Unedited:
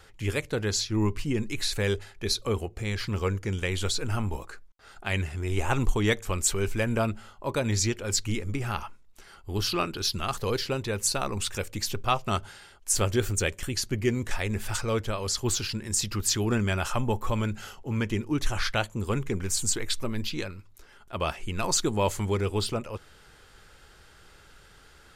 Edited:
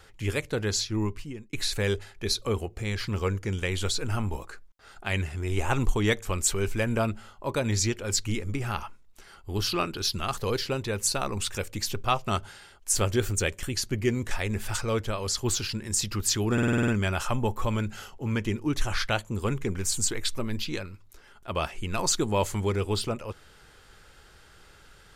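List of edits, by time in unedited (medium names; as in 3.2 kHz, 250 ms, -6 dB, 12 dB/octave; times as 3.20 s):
0.83–1.53 s: fade out
16.53 s: stutter 0.05 s, 8 plays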